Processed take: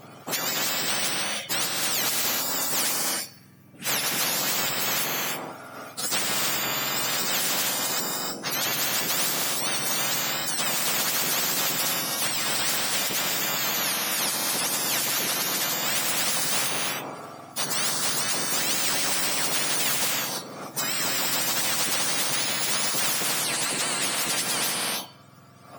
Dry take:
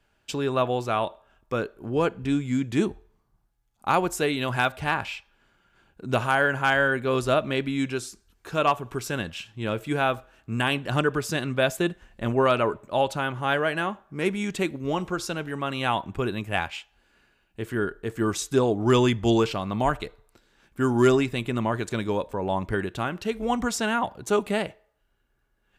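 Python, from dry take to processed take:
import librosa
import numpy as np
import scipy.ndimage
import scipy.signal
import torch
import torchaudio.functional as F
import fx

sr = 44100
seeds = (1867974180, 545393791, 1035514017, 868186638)

y = fx.octave_mirror(x, sr, pivot_hz=1400.0)
y = fx.rev_gated(y, sr, seeds[0], gate_ms=350, shape='rising', drr_db=7.5)
y = fx.spectral_comp(y, sr, ratio=10.0)
y = y * 10.0 ** (3.0 / 20.0)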